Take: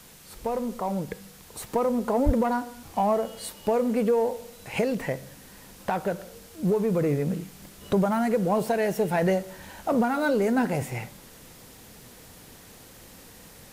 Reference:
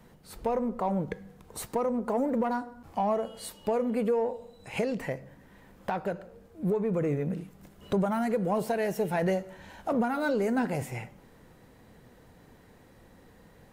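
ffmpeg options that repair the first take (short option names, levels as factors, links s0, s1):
-filter_complex "[0:a]adeclick=t=4,asplit=3[s0][s1][s2];[s0]afade=t=out:st=2.25:d=0.02[s3];[s1]highpass=f=140:w=0.5412,highpass=f=140:w=1.3066,afade=t=in:st=2.25:d=0.02,afade=t=out:st=2.37:d=0.02[s4];[s2]afade=t=in:st=2.37:d=0.02[s5];[s3][s4][s5]amix=inputs=3:normalize=0,afwtdn=0.0032,asetnsamples=n=441:p=0,asendcmd='1.67 volume volume -4dB',volume=1"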